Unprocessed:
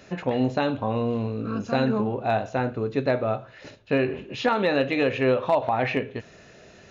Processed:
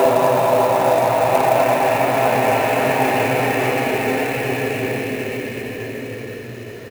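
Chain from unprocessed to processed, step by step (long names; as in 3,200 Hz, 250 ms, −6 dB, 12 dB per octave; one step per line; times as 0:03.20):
extreme stretch with random phases 7.5×, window 1.00 s, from 0:05.47
multiband delay without the direct sound highs, lows 50 ms, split 190 Hz
converter with an unsteady clock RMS 0.021 ms
level +8 dB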